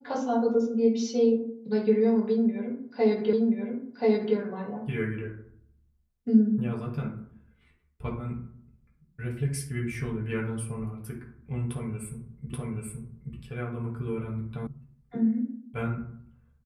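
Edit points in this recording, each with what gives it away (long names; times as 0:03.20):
0:03.33: the same again, the last 1.03 s
0:12.53: the same again, the last 0.83 s
0:14.67: cut off before it has died away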